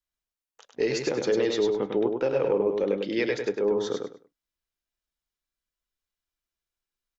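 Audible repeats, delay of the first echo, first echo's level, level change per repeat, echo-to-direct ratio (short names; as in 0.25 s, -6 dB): 3, 0.101 s, -4.5 dB, -13.0 dB, -4.5 dB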